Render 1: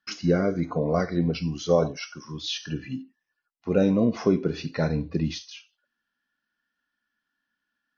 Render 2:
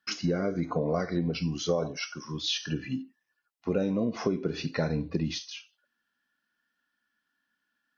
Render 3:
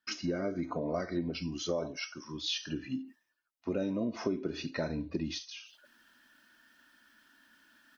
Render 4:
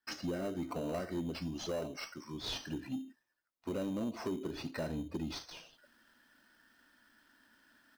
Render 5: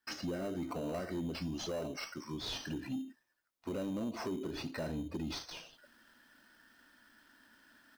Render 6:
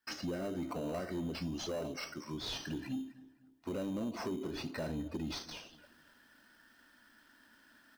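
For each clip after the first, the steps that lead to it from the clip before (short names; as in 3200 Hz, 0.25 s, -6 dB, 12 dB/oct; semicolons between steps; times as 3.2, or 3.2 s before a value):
compressor 6:1, threshold -25 dBFS, peak gain reduction 10 dB; low shelf 63 Hz -10 dB; gain +1.5 dB
comb 3.2 ms, depth 45%; reverse; upward compressor, threshold -40 dBFS; reverse; gain -5 dB
in parallel at -5 dB: sample-and-hold 13×; on the sum: soft clip -25 dBFS, distortion -14 dB; gain -5 dB
limiter -35 dBFS, peak gain reduction 5 dB; gain +3 dB
darkening echo 0.253 s, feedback 42%, low-pass 2400 Hz, level -18.5 dB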